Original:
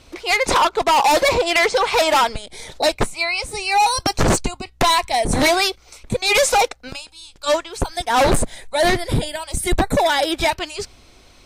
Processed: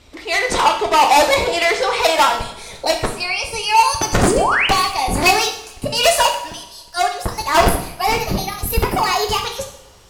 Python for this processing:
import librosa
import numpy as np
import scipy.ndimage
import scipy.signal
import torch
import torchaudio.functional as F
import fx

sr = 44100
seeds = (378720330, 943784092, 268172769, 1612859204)

p1 = fx.speed_glide(x, sr, from_pct=93, to_pct=134)
p2 = fx.level_steps(p1, sr, step_db=14)
p3 = p1 + (p2 * librosa.db_to_amplitude(1.0))
p4 = fx.spec_paint(p3, sr, seeds[0], shape='rise', start_s=4.24, length_s=0.43, low_hz=260.0, high_hz=3200.0, level_db=-13.0)
p5 = fx.rev_double_slope(p4, sr, seeds[1], early_s=0.64, late_s=2.1, knee_db=-22, drr_db=2.5)
y = p5 * librosa.db_to_amplitude(-4.5)